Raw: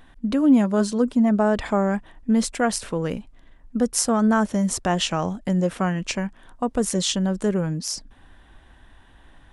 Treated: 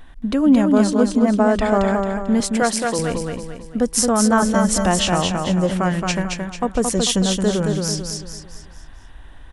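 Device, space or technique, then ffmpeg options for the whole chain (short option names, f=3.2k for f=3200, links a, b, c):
low shelf boost with a cut just above: -filter_complex "[0:a]lowshelf=f=71:g=7.5,equalizer=f=210:t=o:w=1.1:g=-3,asettb=1/sr,asplit=3[a][b][c];[a]atrim=end=2.404[d];[b]atrim=start=2.4:end=2.99,asetpts=PTS-STARTPTS,afade=t=in:d=0.004:c=qsin,afade=t=out:st=0.586:d=0.004:c=qsin,highpass=220[e];[c]atrim=start=2.986[f];[d][e]acrossfade=d=0.004:c1=hsin:c2=qsin[g];[g][f]acrossfade=d=0.004:c1=qsin:c2=hsin,asettb=1/sr,asplit=3[h][i][j];[h]atrim=end=4.424[k];[i]atrim=start=4.42:end=4.86,asetpts=PTS-STARTPTS,afade=t=in:d=0.004:c=qsin,afade=t=out:st=0.436:d=0.004:c=qsin,aecho=1:1:3.5:0.95,atrim=end_sample=19404[l];[j]atrim=start=4.856[m];[k][l]acrossfade=d=0.004:c1=hsin:c2=qsin[n];[n][m]acrossfade=d=0.004:c1=qsin:c2=hsin,aecho=1:1:222|444|666|888|1110:0.631|0.265|0.111|0.0467|0.0196,volume=3.5dB"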